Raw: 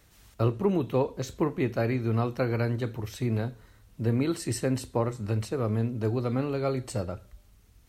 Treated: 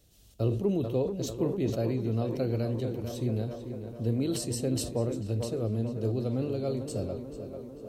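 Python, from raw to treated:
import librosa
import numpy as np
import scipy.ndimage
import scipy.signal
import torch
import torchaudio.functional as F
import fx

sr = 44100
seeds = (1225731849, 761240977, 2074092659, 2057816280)

p1 = fx.band_shelf(x, sr, hz=1400.0, db=-12.5, octaves=1.7)
p2 = p1 + fx.echo_tape(p1, sr, ms=443, feedback_pct=78, wet_db=-7.5, lp_hz=2600.0, drive_db=14.0, wow_cents=26, dry=0)
p3 = fx.sustainer(p2, sr, db_per_s=67.0)
y = p3 * librosa.db_to_amplitude(-3.0)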